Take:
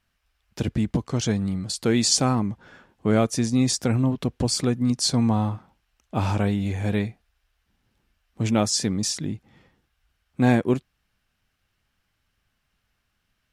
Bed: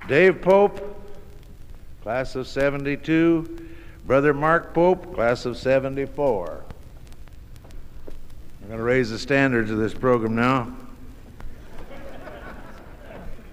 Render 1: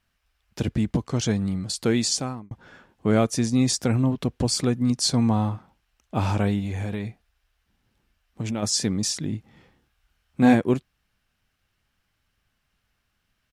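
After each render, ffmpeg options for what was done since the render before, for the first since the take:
ffmpeg -i in.wav -filter_complex "[0:a]asplit=3[link_01][link_02][link_03];[link_01]afade=type=out:start_time=6.59:duration=0.02[link_04];[link_02]acompressor=threshold=-24dB:ratio=6:attack=3.2:release=140:knee=1:detection=peak,afade=type=in:start_time=6.59:duration=0.02,afade=type=out:start_time=8.62:duration=0.02[link_05];[link_03]afade=type=in:start_time=8.62:duration=0.02[link_06];[link_04][link_05][link_06]amix=inputs=3:normalize=0,asplit=3[link_07][link_08][link_09];[link_07]afade=type=out:start_time=9.32:duration=0.02[link_10];[link_08]asplit=2[link_11][link_12];[link_12]adelay=28,volume=-3dB[link_13];[link_11][link_13]amix=inputs=2:normalize=0,afade=type=in:start_time=9.32:duration=0.02,afade=type=out:start_time=10.53:duration=0.02[link_14];[link_09]afade=type=in:start_time=10.53:duration=0.02[link_15];[link_10][link_14][link_15]amix=inputs=3:normalize=0,asplit=2[link_16][link_17];[link_16]atrim=end=2.51,asetpts=PTS-STARTPTS,afade=type=out:start_time=1.86:duration=0.65[link_18];[link_17]atrim=start=2.51,asetpts=PTS-STARTPTS,afade=type=in:duration=0.004:curve=hsin[link_19];[link_18][link_19]concat=n=2:v=0:a=1" out.wav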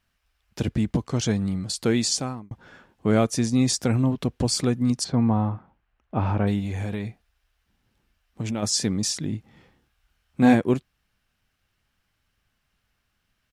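ffmpeg -i in.wav -filter_complex "[0:a]asplit=3[link_01][link_02][link_03];[link_01]afade=type=out:start_time=5.03:duration=0.02[link_04];[link_02]lowpass=1900,afade=type=in:start_time=5.03:duration=0.02,afade=type=out:start_time=6.46:duration=0.02[link_05];[link_03]afade=type=in:start_time=6.46:duration=0.02[link_06];[link_04][link_05][link_06]amix=inputs=3:normalize=0" out.wav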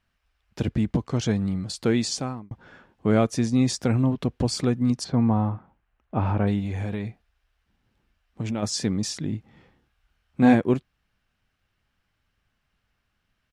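ffmpeg -i in.wav -af "highshelf=frequency=5700:gain=-10" out.wav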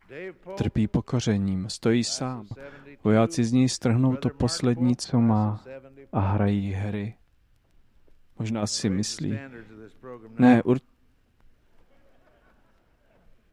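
ffmpeg -i in.wav -i bed.wav -filter_complex "[1:a]volume=-22.5dB[link_01];[0:a][link_01]amix=inputs=2:normalize=0" out.wav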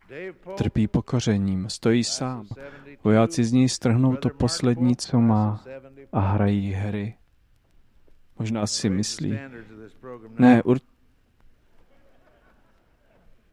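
ffmpeg -i in.wav -af "volume=2dB" out.wav

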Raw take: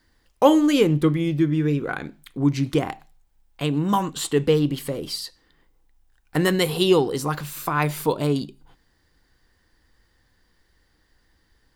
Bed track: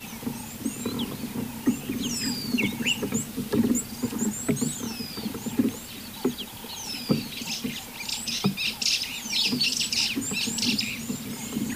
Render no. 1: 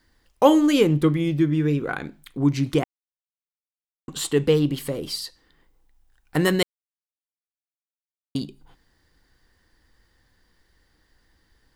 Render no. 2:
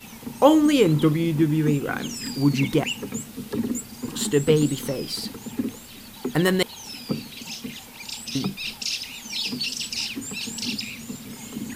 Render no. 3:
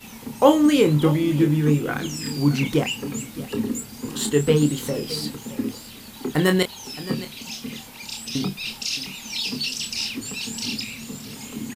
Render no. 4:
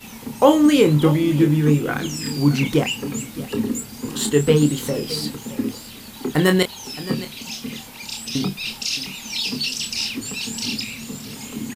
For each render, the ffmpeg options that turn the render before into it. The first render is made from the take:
ffmpeg -i in.wav -filter_complex "[0:a]asplit=5[link_01][link_02][link_03][link_04][link_05];[link_01]atrim=end=2.84,asetpts=PTS-STARTPTS,afade=type=out:start_time=2.836:duration=0.004:curve=hsin[link_06];[link_02]atrim=start=2.84:end=4.08,asetpts=PTS-STARTPTS,volume=0[link_07];[link_03]atrim=start=4.08:end=6.63,asetpts=PTS-STARTPTS,afade=type=in:duration=0.004:curve=hsin,afade=type=out:start_time=2.546:duration=0.004:curve=hsin[link_08];[link_04]atrim=start=6.63:end=8.35,asetpts=PTS-STARTPTS,volume=0[link_09];[link_05]atrim=start=8.35,asetpts=PTS-STARTPTS,afade=type=in:duration=0.004:curve=hsin[link_10];[link_06][link_07][link_08][link_09][link_10]concat=n=5:v=0:a=1" out.wav
ffmpeg -i in.wav -i bed.wav -filter_complex "[1:a]volume=-3.5dB[link_01];[0:a][link_01]amix=inputs=2:normalize=0" out.wav
ffmpeg -i in.wav -filter_complex "[0:a]asplit=2[link_01][link_02];[link_02]adelay=27,volume=-7dB[link_03];[link_01][link_03]amix=inputs=2:normalize=0,aecho=1:1:619:0.168" out.wav
ffmpeg -i in.wav -af "volume=2.5dB,alimiter=limit=-1dB:level=0:latency=1" out.wav

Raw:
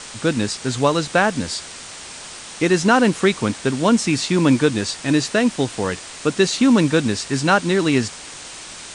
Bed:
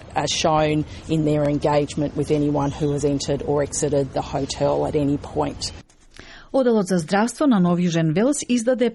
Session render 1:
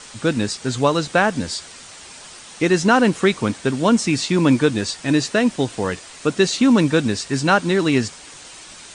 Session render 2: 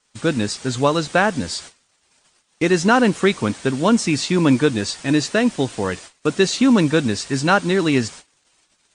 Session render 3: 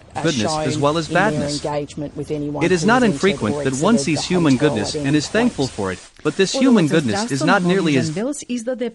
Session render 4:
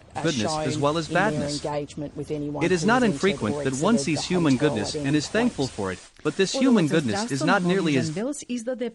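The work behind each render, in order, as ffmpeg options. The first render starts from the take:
ffmpeg -i in.wav -af "afftdn=noise_reduction=6:noise_floor=-36" out.wav
ffmpeg -i in.wav -af "agate=range=-28dB:threshold=-36dB:ratio=16:detection=peak" out.wav
ffmpeg -i in.wav -i bed.wav -filter_complex "[1:a]volume=-4dB[link_01];[0:a][link_01]amix=inputs=2:normalize=0" out.wav
ffmpeg -i in.wav -af "volume=-5.5dB" out.wav

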